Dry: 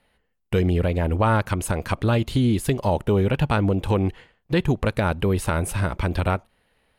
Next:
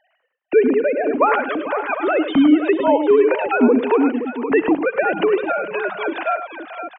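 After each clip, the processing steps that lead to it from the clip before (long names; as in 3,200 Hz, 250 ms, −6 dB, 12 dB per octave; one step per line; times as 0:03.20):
three sine waves on the formant tracks
mains-hum notches 50/100/150/200 Hz
multi-tap delay 63/104/445/520/752 ms −18.5/−11/−15.5/−10/−13.5 dB
level +3.5 dB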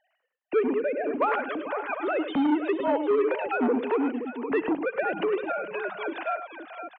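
saturating transformer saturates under 560 Hz
level −8.5 dB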